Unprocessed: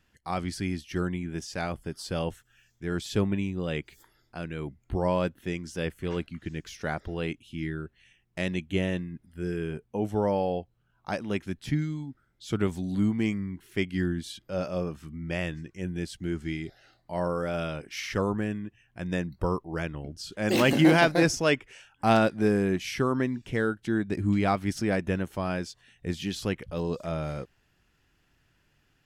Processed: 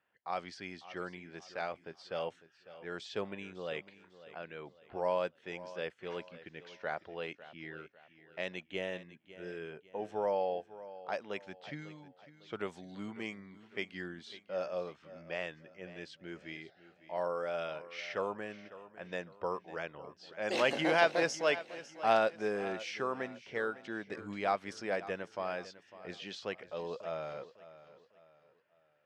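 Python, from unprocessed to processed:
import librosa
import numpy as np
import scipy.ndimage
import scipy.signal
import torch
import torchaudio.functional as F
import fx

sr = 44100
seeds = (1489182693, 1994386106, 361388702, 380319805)

p1 = fx.bandpass_edges(x, sr, low_hz=180.0, high_hz=6100.0)
p2 = fx.env_lowpass(p1, sr, base_hz=2100.0, full_db=-24.0)
p3 = fx.low_shelf_res(p2, sr, hz=390.0, db=-8.5, q=1.5)
p4 = p3 + fx.echo_feedback(p3, sr, ms=551, feedback_pct=38, wet_db=-16, dry=0)
y = p4 * 10.0 ** (-6.0 / 20.0)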